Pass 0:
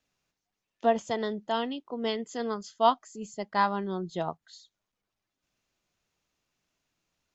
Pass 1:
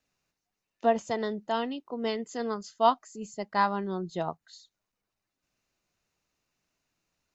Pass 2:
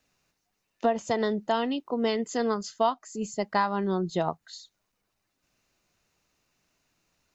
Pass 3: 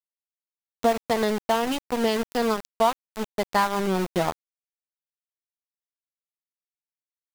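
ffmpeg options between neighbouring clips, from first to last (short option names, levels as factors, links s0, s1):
-af "bandreject=f=3300:w=9.3"
-af "acompressor=threshold=0.0355:ratio=4,volume=2.24"
-af "aeval=exprs='val(0)*gte(abs(val(0)),0.0376)':c=same,volume=1.5"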